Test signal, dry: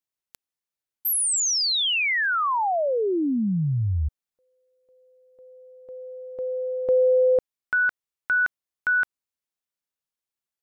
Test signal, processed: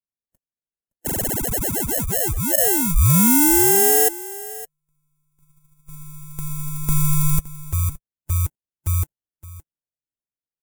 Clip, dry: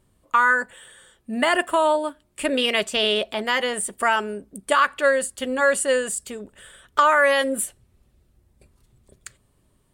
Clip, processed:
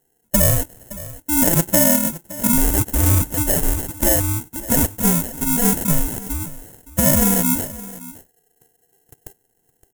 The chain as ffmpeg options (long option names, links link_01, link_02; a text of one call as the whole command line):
ffmpeg -i in.wav -filter_complex "[0:a]afftfilt=real='real(if(between(b,1,1008),(2*floor((b-1)/24)+1)*24-b,b),0)':imag='imag(if(between(b,1,1008),(2*floor((b-1)/24)+1)*24-b,b),0)*if(between(b,1,1008),-1,1)':win_size=2048:overlap=0.75,agate=range=-13dB:threshold=-49dB:ratio=16:release=55:detection=rms,tiltshelf=frequency=700:gain=6,acrusher=samples=37:mix=1:aa=0.000001,lowshelf=frequency=250:gain=4,aexciter=amount=10.7:drive=3.5:freq=6600,asoftclip=type=hard:threshold=-4dB,asplit=2[link_01][link_02];[link_02]aecho=0:1:566:0.133[link_03];[link_01][link_03]amix=inputs=2:normalize=0" out.wav